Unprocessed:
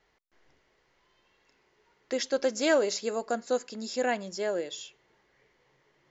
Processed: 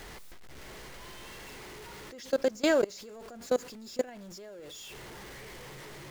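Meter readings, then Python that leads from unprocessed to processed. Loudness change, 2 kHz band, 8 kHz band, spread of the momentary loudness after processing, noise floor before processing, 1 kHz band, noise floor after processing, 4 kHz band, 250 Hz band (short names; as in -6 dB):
-3.5 dB, -3.5 dB, n/a, 19 LU, -71 dBFS, -6.0 dB, -47 dBFS, -4.0 dB, -1.0 dB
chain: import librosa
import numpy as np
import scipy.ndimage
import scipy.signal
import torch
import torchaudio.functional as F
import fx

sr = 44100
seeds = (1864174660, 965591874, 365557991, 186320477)

y = x + 0.5 * 10.0 ** (-33.5 / 20.0) * np.sign(x)
y = fx.low_shelf(y, sr, hz=220.0, db=8.0)
y = fx.level_steps(y, sr, step_db=23)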